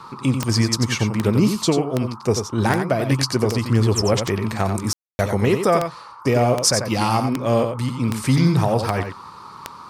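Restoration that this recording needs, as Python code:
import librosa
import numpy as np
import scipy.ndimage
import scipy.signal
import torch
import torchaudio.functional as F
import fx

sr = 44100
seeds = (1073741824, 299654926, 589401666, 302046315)

y = fx.fix_declick_ar(x, sr, threshold=10.0)
y = fx.fix_ambience(y, sr, seeds[0], print_start_s=9.13, print_end_s=9.63, start_s=4.93, end_s=5.19)
y = fx.noise_reduce(y, sr, print_start_s=9.13, print_end_s=9.63, reduce_db=26.0)
y = fx.fix_echo_inverse(y, sr, delay_ms=91, level_db=-7.5)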